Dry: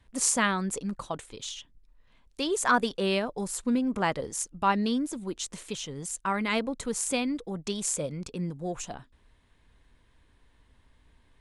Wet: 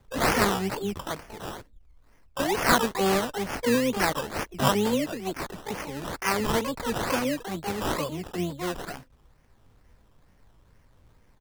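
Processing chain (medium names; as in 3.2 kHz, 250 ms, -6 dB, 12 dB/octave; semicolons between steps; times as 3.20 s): harmony voices -12 st -15 dB, +12 st -1 dB; decimation with a swept rate 16×, swing 60% 2.2 Hz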